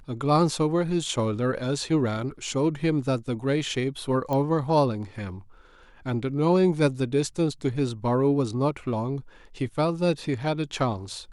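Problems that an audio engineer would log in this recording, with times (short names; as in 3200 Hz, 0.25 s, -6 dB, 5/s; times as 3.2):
4.33 pop -16 dBFS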